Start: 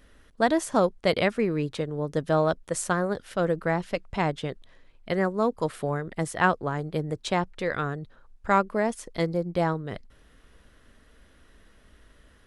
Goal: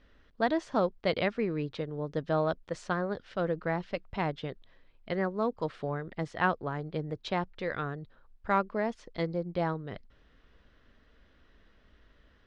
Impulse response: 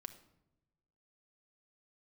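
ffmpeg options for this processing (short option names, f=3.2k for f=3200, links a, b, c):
-af "lowpass=f=5k:w=0.5412,lowpass=f=5k:w=1.3066,volume=-5.5dB"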